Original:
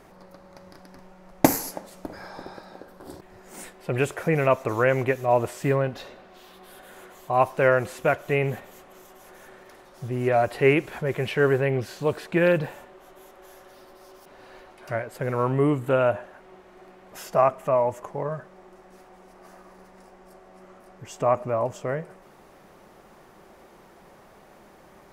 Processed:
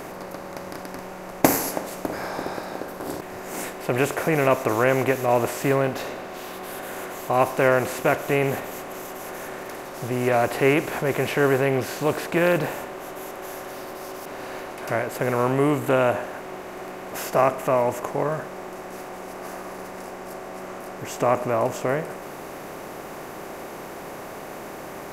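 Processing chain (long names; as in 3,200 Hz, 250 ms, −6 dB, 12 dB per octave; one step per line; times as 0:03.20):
compressor on every frequency bin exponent 0.6
bass and treble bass −1 dB, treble +3 dB
level −2 dB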